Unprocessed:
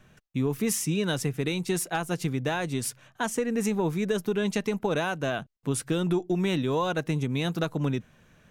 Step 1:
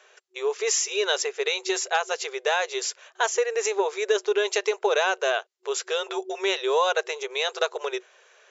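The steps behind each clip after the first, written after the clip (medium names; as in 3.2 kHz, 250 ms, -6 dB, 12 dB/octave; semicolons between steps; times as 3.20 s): FFT band-pass 370–7500 Hz; treble shelf 4 kHz +6 dB; trim +5.5 dB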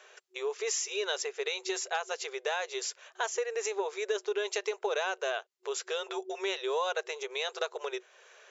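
compression 1.5:1, threshold -44 dBFS, peak gain reduction 9.5 dB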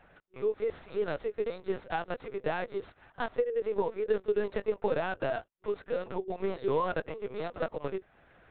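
median filter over 15 samples; LPC vocoder at 8 kHz pitch kept; dynamic bell 430 Hz, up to +4 dB, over -42 dBFS, Q 0.88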